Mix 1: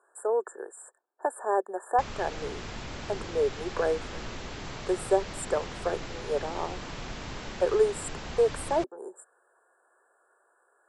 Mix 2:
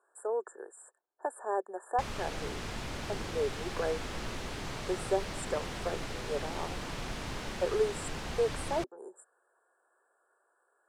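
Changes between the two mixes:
speech -6.0 dB; background: remove brick-wall FIR low-pass 7.8 kHz

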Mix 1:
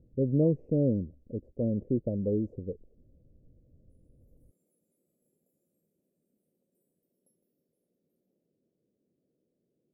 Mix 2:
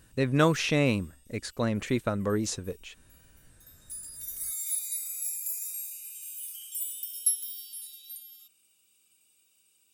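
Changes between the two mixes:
background -10.5 dB; master: remove elliptic low-pass 550 Hz, stop band 60 dB

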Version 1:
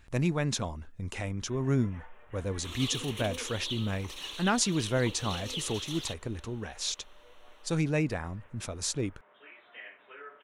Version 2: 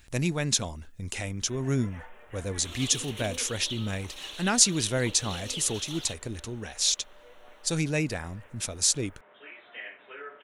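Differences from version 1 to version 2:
speech: add treble shelf 3.2 kHz +12 dB; first sound +6.0 dB; master: add peaking EQ 1.1 kHz -4 dB 0.65 oct

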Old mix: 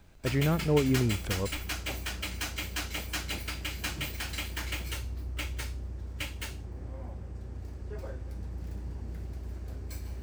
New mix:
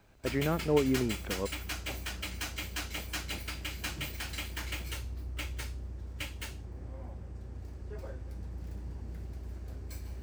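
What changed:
speech: add band-pass 210–2600 Hz; reverb: off

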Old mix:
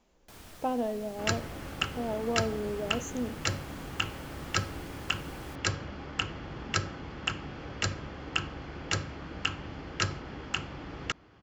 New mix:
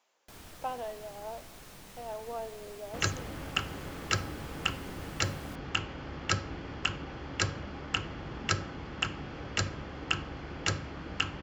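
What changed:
speech: add high-pass 780 Hz 12 dB/octave; second sound: entry +1.75 s

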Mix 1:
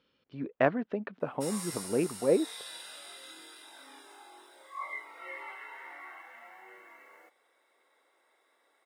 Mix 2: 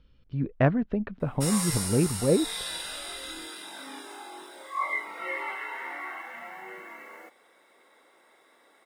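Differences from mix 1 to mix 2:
background +9.5 dB; master: remove high-pass 340 Hz 12 dB/octave

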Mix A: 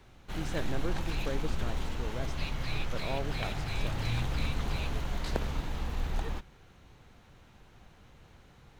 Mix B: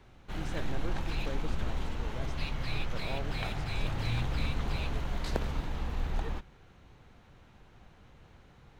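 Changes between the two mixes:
speech -4.5 dB; first sound: add treble shelf 4.9 kHz -7.5 dB

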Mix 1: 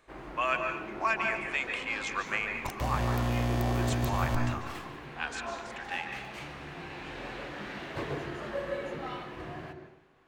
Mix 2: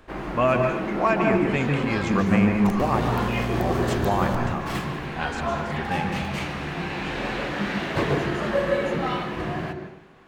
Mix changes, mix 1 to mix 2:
speech: remove high-pass 1.4 kHz 12 dB/octave; first sound +11.5 dB; master: add peaking EQ 190 Hz +10 dB 0.32 oct

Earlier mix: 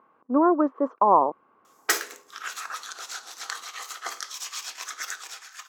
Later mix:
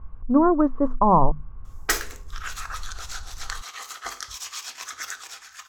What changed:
speech: add hum notches 50/100/150/200/250 Hz; master: remove high-pass 310 Hz 24 dB/octave

